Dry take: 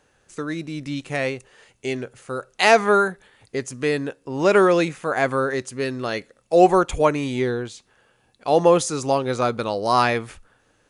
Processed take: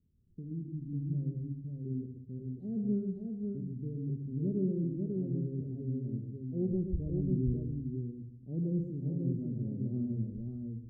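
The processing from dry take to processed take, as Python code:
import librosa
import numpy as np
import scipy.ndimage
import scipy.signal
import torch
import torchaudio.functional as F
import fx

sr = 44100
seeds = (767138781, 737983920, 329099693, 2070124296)

y = scipy.signal.sosfilt(scipy.signal.cheby2(4, 60, 870.0, 'lowpass', fs=sr, output='sos'), x)
y = fx.peak_eq(y, sr, hz=83.0, db=11.0, octaves=0.79)
y = fx.echo_multitap(y, sr, ms=(127, 543), db=(-7.5, -3.5))
y = fx.room_shoebox(y, sr, seeds[0], volume_m3=2700.0, walls='furnished', distance_m=1.2)
y = y * 10.0 ** (-7.5 / 20.0)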